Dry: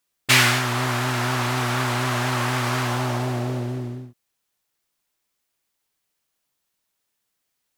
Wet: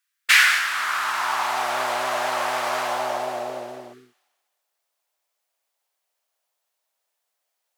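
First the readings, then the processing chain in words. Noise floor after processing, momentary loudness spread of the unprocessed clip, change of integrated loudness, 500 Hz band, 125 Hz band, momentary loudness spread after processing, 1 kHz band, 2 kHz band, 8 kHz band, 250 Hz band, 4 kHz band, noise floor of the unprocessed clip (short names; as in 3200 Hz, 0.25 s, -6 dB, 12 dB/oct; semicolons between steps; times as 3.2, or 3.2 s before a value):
-79 dBFS, 12 LU, +0.5 dB, +0.5 dB, -29.0 dB, 16 LU, +2.0 dB, +2.5 dB, -2.0 dB, -15.0 dB, -1.0 dB, -77 dBFS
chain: low shelf 280 Hz +4.5 dB; thin delay 0.204 s, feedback 37%, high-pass 1800 Hz, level -14 dB; spectral repair 3.95–4.19, 490–1100 Hz after; high-pass sweep 1600 Hz -> 640 Hz, 0.66–1.78; gain -2.5 dB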